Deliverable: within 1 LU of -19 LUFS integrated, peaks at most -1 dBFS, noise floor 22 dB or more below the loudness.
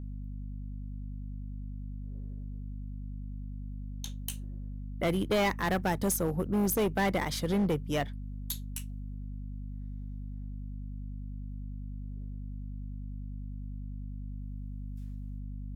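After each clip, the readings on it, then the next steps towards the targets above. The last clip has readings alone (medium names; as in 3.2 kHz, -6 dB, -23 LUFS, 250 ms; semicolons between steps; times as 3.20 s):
clipped samples 1.6%; clipping level -23.5 dBFS; hum 50 Hz; highest harmonic 250 Hz; hum level -37 dBFS; loudness -35.5 LUFS; peak level -23.5 dBFS; loudness target -19.0 LUFS
-> clip repair -23.5 dBFS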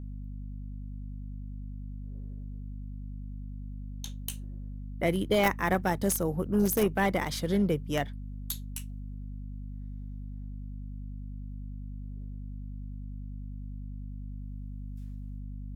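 clipped samples 0.0%; hum 50 Hz; highest harmonic 250 Hz; hum level -37 dBFS
-> de-hum 50 Hz, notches 5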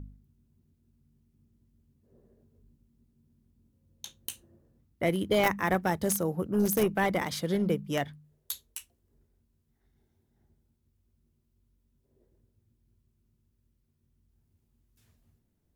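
hum not found; loudness -29.5 LUFS; peak level -13.5 dBFS; loudness target -19.0 LUFS
-> trim +10.5 dB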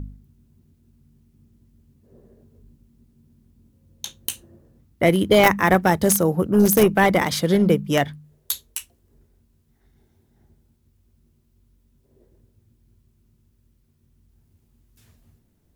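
loudness -19.0 LUFS; peak level -3.0 dBFS; noise floor -64 dBFS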